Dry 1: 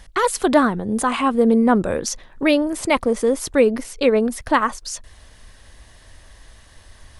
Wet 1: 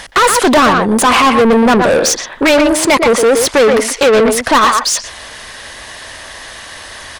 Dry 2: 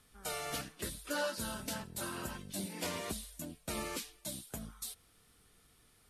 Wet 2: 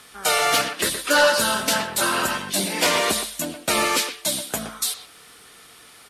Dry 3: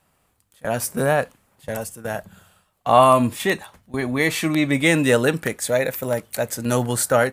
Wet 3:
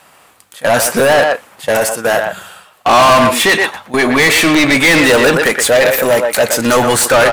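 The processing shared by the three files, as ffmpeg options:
-filter_complex "[0:a]asplit=2[link_01][link_02];[link_02]adelay=120,highpass=300,lowpass=3400,asoftclip=type=hard:threshold=-10.5dB,volume=-9dB[link_03];[link_01][link_03]amix=inputs=2:normalize=0,asplit=2[link_04][link_05];[link_05]highpass=frequency=720:poles=1,volume=30dB,asoftclip=type=tanh:threshold=-0.5dB[link_06];[link_04][link_06]amix=inputs=2:normalize=0,lowpass=frequency=6200:poles=1,volume=-6dB,volume=-1dB"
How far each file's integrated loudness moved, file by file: +9.0, +19.5, +10.0 LU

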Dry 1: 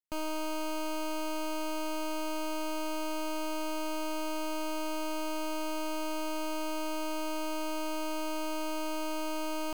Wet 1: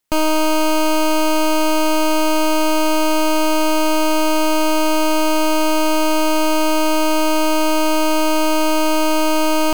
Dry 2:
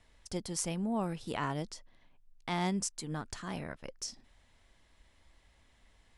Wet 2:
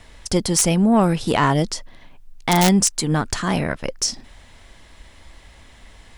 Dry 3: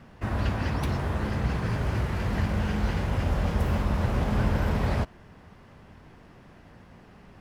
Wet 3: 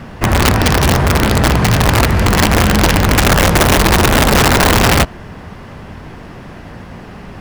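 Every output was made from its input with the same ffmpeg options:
-af "apsyclip=19.5dB,aeval=exprs='(mod(1.12*val(0)+1,2)-1)/1.12':channel_layout=same,acontrast=39,volume=-6dB"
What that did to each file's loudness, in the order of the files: +18.5, +18.0, +16.5 LU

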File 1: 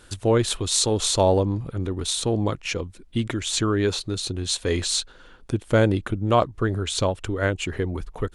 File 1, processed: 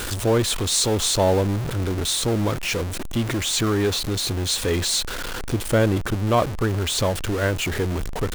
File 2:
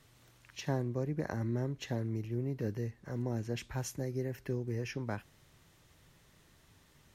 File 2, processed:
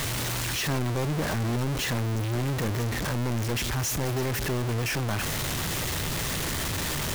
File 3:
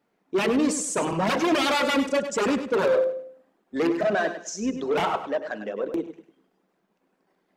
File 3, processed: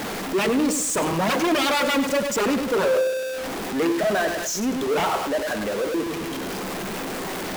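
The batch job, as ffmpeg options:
-af "aeval=exprs='val(0)+0.5*0.0841*sgn(val(0))':channel_layout=same,volume=-2dB"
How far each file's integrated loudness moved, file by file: +1.5, +9.5, +1.5 LU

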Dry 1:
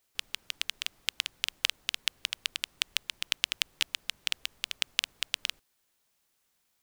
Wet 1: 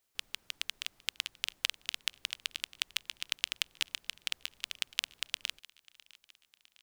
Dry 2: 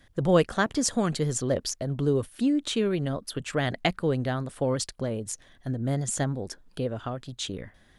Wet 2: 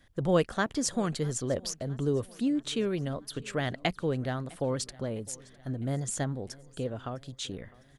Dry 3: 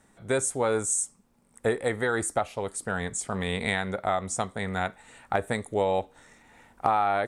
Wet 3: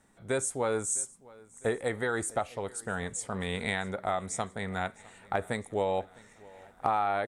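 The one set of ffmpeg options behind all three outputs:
-af "aecho=1:1:656|1312|1968|2624:0.0708|0.0396|0.0222|0.0124,volume=-4dB"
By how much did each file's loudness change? −4.0, −4.0, −4.0 LU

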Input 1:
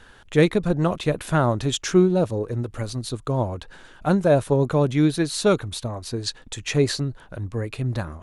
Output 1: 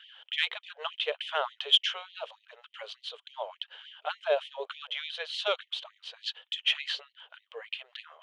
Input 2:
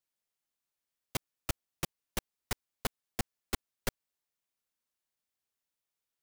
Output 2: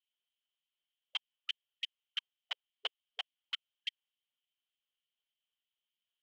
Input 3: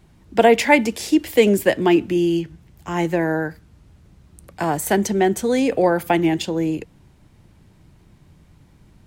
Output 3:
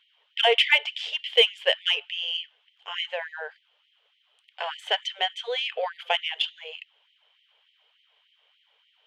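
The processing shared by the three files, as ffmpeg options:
-af "lowpass=frequency=3100:width_type=q:width=12,aeval=exprs='1.33*(cos(1*acos(clip(val(0)/1.33,-1,1)))-cos(1*PI/2))+0.0211*(cos(7*acos(clip(val(0)/1.33,-1,1)))-cos(7*PI/2))':channel_layout=same,afftfilt=real='re*gte(b*sr/1024,390*pow(1900/390,0.5+0.5*sin(2*PI*3.4*pts/sr)))':imag='im*gte(b*sr/1024,390*pow(1900/390,0.5+0.5*sin(2*PI*3.4*pts/sr)))':win_size=1024:overlap=0.75,volume=-7.5dB"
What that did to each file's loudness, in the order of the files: −9.0, −2.0, −6.0 LU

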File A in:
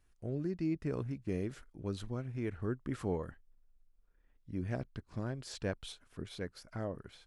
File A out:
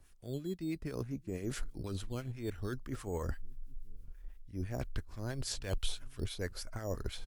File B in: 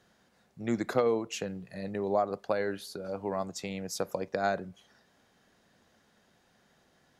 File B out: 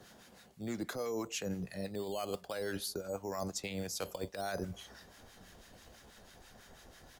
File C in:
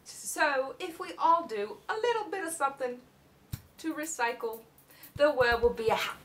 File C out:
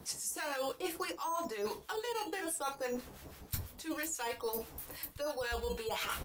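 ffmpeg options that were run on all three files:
-filter_complex "[0:a]highshelf=frequency=8800:gain=8,acrossover=split=1100[link_01][link_02];[link_01]aeval=exprs='val(0)*(1-0.7/2+0.7/2*cos(2*PI*6.1*n/s))':channel_layout=same[link_03];[link_02]aeval=exprs='val(0)*(1-0.7/2-0.7/2*cos(2*PI*6.1*n/s))':channel_layout=same[link_04];[link_03][link_04]amix=inputs=2:normalize=0,alimiter=level_in=3.5dB:limit=-24dB:level=0:latency=1:release=50,volume=-3.5dB,areverse,acompressor=threshold=-46dB:ratio=16,areverse,asubboost=boost=6.5:cutoff=61,acrossover=split=300|1400[link_05][link_06][link_07];[link_05]aecho=1:1:790:0.0841[link_08];[link_06]acrusher=samples=9:mix=1:aa=0.000001:lfo=1:lforange=5.4:lforate=0.56[link_09];[link_08][link_09][link_07]amix=inputs=3:normalize=0,volume=12.5dB" -ar 48000 -c:a libvorbis -b:a 128k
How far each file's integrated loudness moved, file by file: −1.0, −6.5, −8.0 LU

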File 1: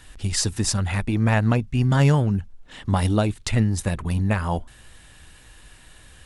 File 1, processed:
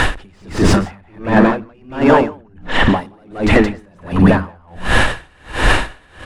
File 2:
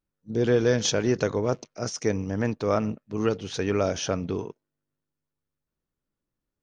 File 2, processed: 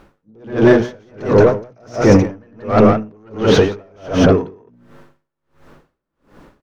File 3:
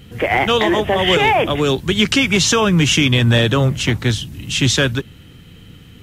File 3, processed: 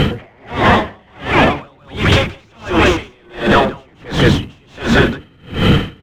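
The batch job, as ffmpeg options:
-filter_complex "[0:a]afftfilt=real='re*lt(hypot(re,im),0.631)':imag='im*lt(hypot(re,im),0.631)':win_size=1024:overlap=0.75,crystalizer=i=1:c=0,lowshelf=frequency=94:gain=3.5,bandreject=frequency=60:width_type=h:width=6,bandreject=frequency=120:width_type=h:width=6,bandreject=frequency=180:width_type=h:width=6,bandreject=frequency=240:width_type=h:width=6,bandreject=frequency=300:width_type=h:width=6,acontrast=23,asoftclip=type=tanh:threshold=-18.5dB,asplit=2[link_01][link_02];[link_02]highpass=frequency=720:poles=1,volume=16dB,asoftclip=type=tanh:threshold=-18.5dB[link_03];[link_01][link_03]amix=inputs=2:normalize=0,lowpass=frequency=1100:poles=1,volume=-6dB,lowpass=frequency=1900:poles=1,aecho=1:1:90.38|174.9:0.251|0.794,areverse,acompressor=threshold=-36dB:ratio=5,areverse,alimiter=level_in=35dB:limit=-1dB:release=50:level=0:latency=1,aeval=exprs='val(0)*pow(10,-39*(0.5-0.5*cos(2*PI*1.4*n/s))/20)':channel_layout=same"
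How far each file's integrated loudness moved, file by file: +7.0, +12.0, +0.5 LU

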